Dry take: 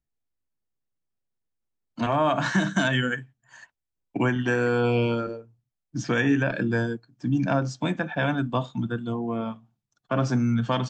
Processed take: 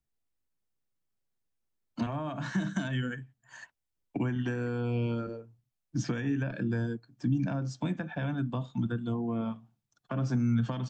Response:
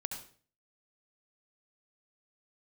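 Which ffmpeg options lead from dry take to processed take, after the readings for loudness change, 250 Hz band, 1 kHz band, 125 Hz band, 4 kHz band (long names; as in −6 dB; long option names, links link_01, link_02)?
−7.0 dB, −5.5 dB, −13.0 dB, −3.5 dB, −12.5 dB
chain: -filter_complex "[0:a]alimiter=limit=-17.5dB:level=0:latency=1:release=497,acrossover=split=270[link_01][link_02];[link_02]acompressor=threshold=-38dB:ratio=4[link_03];[link_01][link_03]amix=inputs=2:normalize=0"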